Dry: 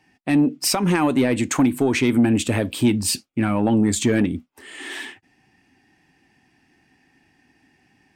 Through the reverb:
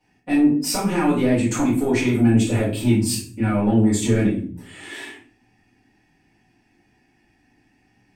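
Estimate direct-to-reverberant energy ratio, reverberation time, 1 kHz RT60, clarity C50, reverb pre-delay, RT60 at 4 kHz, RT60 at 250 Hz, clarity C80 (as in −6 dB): −10.5 dB, 0.45 s, 0.40 s, 4.5 dB, 3 ms, 0.30 s, 0.70 s, 10.0 dB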